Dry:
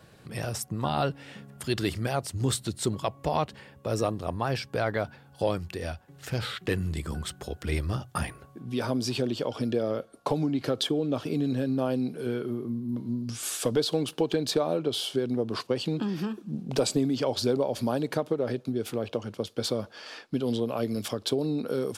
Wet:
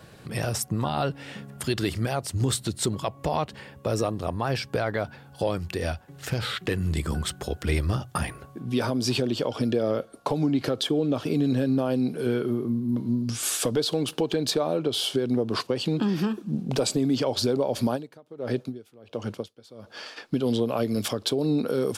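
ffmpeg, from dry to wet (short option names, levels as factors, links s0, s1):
-filter_complex "[0:a]asplit=3[s0][s1][s2];[s0]afade=t=out:st=17.95:d=0.02[s3];[s1]aeval=exprs='val(0)*pow(10,-28*(0.5-0.5*cos(2*PI*1.4*n/s))/20)':c=same,afade=t=in:st=17.95:d=0.02,afade=t=out:st=20.16:d=0.02[s4];[s2]afade=t=in:st=20.16:d=0.02[s5];[s3][s4][s5]amix=inputs=3:normalize=0,alimiter=limit=0.1:level=0:latency=1:release=190,volume=1.88"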